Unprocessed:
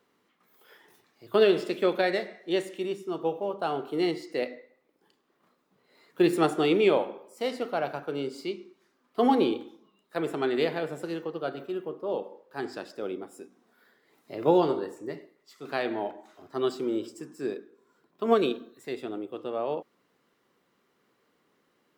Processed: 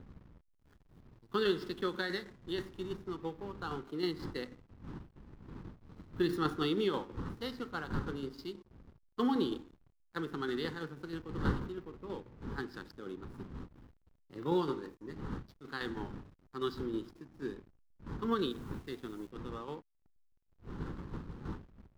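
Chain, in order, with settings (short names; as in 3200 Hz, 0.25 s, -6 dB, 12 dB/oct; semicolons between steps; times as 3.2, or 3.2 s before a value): wind noise 530 Hz -41 dBFS; bell 480 Hz -3 dB 1.8 oct; fixed phaser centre 2400 Hz, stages 6; backlash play -45.5 dBFS; tremolo saw down 6.2 Hz, depth 50%; 18.5–19.31 requantised 10-bit, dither none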